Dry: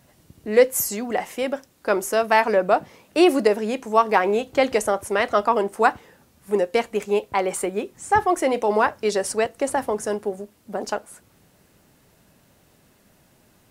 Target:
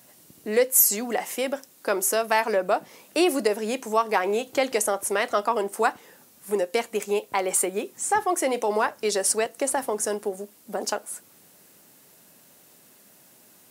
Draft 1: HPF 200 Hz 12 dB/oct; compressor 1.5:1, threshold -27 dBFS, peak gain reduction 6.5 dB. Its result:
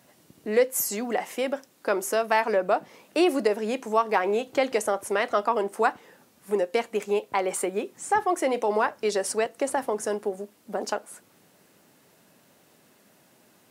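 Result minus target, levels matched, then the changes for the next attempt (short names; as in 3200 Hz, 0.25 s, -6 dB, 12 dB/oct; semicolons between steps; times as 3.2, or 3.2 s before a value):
8000 Hz band -7.0 dB
add after compressor: high shelf 5500 Hz +12 dB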